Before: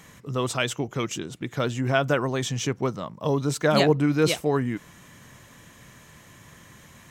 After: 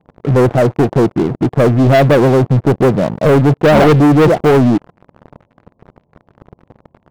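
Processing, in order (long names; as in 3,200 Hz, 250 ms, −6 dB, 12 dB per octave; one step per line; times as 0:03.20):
Butterworth low-pass 870 Hz 48 dB per octave
low-shelf EQ 99 Hz −3.5 dB
leveller curve on the samples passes 5
level +4 dB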